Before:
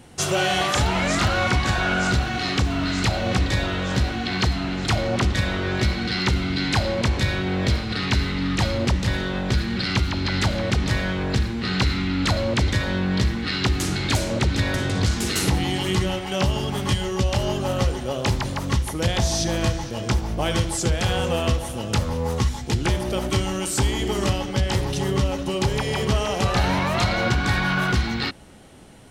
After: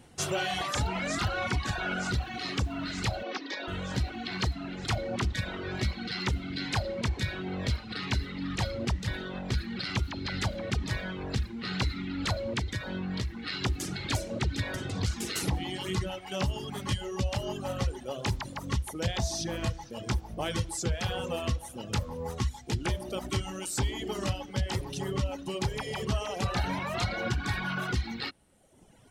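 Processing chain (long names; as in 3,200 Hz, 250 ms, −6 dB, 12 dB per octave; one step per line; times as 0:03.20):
0:03.23–0:03.68: elliptic band-pass filter 270–5,600 Hz
reverb reduction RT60 1.2 s
0:12.58–0:13.52: downward compressor, threshold −21 dBFS, peak gain reduction 5 dB
level −7.5 dB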